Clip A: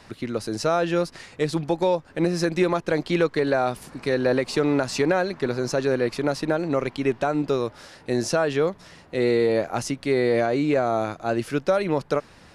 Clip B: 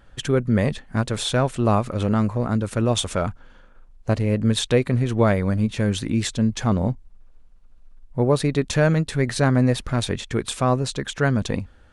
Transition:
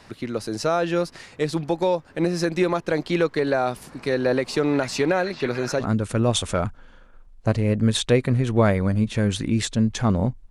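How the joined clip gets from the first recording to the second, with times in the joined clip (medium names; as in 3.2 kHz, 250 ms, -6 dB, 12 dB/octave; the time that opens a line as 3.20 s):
clip A
4.29–5.86 s: repeats whose band climbs or falls 443 ms, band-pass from 2.7 kHz, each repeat -0.7 oct, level -3 dB
5.82 s: go over to clip B from 2.44 s, crossfade 0.08 s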